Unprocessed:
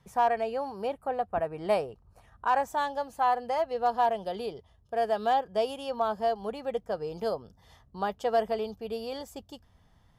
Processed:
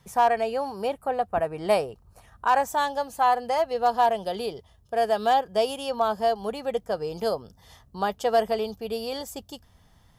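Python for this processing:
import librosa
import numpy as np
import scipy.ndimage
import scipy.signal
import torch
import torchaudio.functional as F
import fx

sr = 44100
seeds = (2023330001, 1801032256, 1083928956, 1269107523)

y = fx.high_shelf(x, sr, hz=4500.0, db=8.5)
y = y * librosa.db_to_amplitude(4.0)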